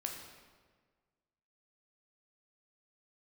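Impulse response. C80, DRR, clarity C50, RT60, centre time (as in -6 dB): 6.0 dB, 1.5 dB, 4.0 dB, 1.5 s, 46 ms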